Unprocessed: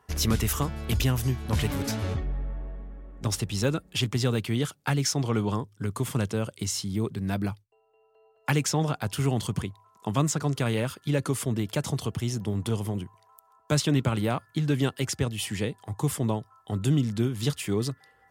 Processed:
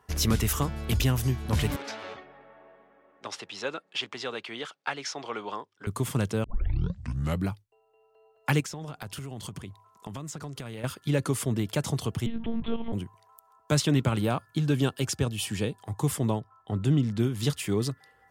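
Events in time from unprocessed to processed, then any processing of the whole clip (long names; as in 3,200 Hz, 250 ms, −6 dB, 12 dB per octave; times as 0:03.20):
0:01.76–0:05.87: band-pass filter 590–3,900 Hz
0:06.44: tape start 1.06 s
0:08.60–0:10.84: downward compressor 12 to 1, threshold −34 dBFS
0:12.26–0:12.93: one-pitch LPC vocoder at 8 kHz 230 Hz
0:14.19–0:15.80: notch filter 2,000 Hz, Q 6.6
0:16.39–0:17.18: low-pass filter 1,800 Hz → 3,700 Hz 6 dB per octave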